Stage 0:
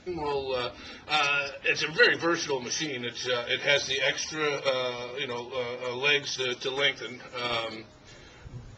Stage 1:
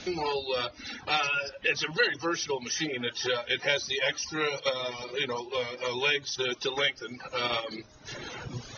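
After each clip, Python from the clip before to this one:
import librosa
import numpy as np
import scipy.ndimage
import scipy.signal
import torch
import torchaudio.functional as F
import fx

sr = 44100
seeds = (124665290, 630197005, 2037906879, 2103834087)

y = fx.dereverb_blind(x, sr, rt60_s=0.99)
y = scipy.signal.sosfilt(scipy.signal.cheby1(10, 1.0, 6600.0, 'lowpass', fs=sr, output='sos'), y)
y = fx.band_squash(y, sr, depth_pct=70)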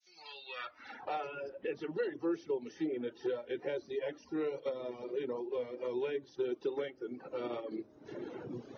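y = fx.fade_in_head(x, sr, length_s=1.4)
y = fx.filter_sweep_bandpass(y, sr, from_hz=5800.0, to_hz=340.0, start_s=0.1, end_s=1.35, q=2.1)
y = fx.band_squash(y, sr, depth_pct=40)
y = F.gain(torch.from_numpy(y), 1.0).numpy()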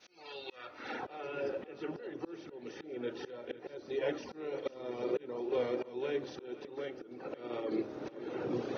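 y = fx.bin_compress(x, sr, power=0.6)
y = fx.auto_swell(y, sr, attack_ms=461.0)
y = y + 10.0 ** (-16.0 / 20.0) * np.pad(y, (int(497 * sr / 1000.0), 0))[:len(y)]
y = F.gain(torch.from_numpy(y), 2.5).numpy()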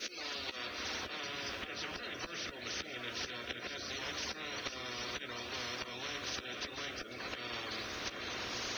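y = fx.fixed_phaser(x, sr, hz=350.0, stages=4)
y = fx.doubler(y, sr, ms=14.0, db=-11)
y = fx.spectral_comp(y, sr, ratio=10.0)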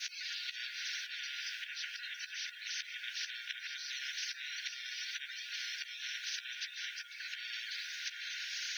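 y = fx.brickwall_highpass(x, sr, low_hz=1400.0)
y = F.gain(torch.from_numpy(y), 1.0).numpy()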